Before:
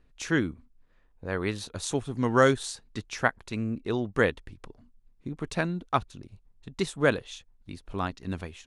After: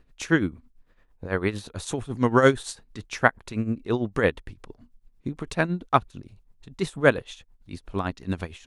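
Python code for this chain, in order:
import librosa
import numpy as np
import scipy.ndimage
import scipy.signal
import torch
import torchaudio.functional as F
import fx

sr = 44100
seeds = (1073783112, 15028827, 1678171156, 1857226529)

y = fx.dynamic_eq(x, sr, hz=5500.0, q=0.76, threshold_db=-48.0, ratio=4.0, max_db=-5)
y = y * (1.0 - 0.72 / 2.0 + 0.72 / 2.0 * np.cos(2.0 * np.pi * 8.9 * (np.arange(len(y)) / sr)))
y = F.gain(torch.from_numpy(y), 6.5).numpy()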